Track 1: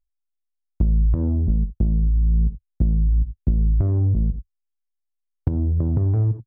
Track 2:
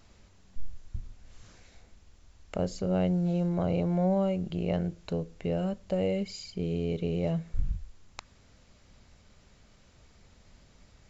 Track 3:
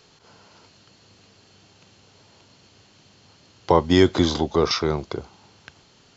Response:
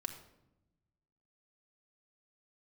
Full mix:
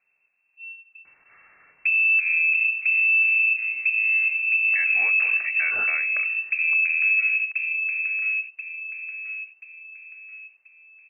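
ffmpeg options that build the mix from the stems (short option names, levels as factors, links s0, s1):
-filter_complex "[0:a]equalizer=f=1300:w=3.6:g=6.5,acontrast=65,adelay=1050,volume=0.501,asplit=3[s0][s1][s2];[s1]volume=0.631[s3];[s2]volume=0.473[s4];[1:a]volume=0.211[s5];[2:a]highpass=f=410:w=0.5412,highpass=f=410:w=1.3066,adelay=1050,volume=0.841,asplit=2[s6][s7];[s7]volume=0.168[s8];[s0][s6]amix=inputs=2:normalize=0,acompressor=threshold=0.0355:ratio=1.5,volume=1[s9];[3:a]atrim=start_sample=2205[s10];[s3][s8]amix=inputs=2:normalize=0[s11];[s11][s10]afir=irnorm=-1:irlink=0[s12];[s4]aecho=0:1:1033|2066|3099|4132|5165:1|0.38|0.144|0.0549|0.0209[s13];[s5][s9][s12][s13]amix=inputs=4:normalize=0,lowpass=f=2300:t=q:w=0.5098,lowpass=f=2300:t=q:w=0.6013,lowpass=f=2300:t=q:w=0.9,lowpass=f=2300:t=q:w=2.563,afreqshift=-2700,alimiter=limit=0.2:level=0:latency=1:release=188"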